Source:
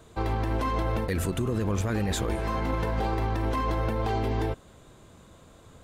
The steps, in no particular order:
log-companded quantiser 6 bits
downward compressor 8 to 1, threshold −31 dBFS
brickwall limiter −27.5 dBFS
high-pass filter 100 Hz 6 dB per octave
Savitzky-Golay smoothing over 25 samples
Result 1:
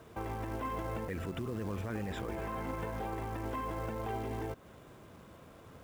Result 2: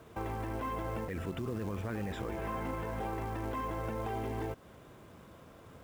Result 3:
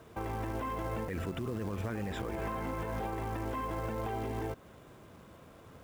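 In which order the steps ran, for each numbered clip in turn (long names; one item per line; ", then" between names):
Savitzky-Golay smoothing, then log-companded quantiser, then downward compressor, then brickwall limiter, then high-pass filter
downward compressor, then high-pass filter, then brickwall limiter, then Savitzky-Golay smoothing, then log-companded quantiser
Savitzky-Golay smoothing, then log-companded quantiser, then high-pass filter, then downward compressor, then brickwall limiter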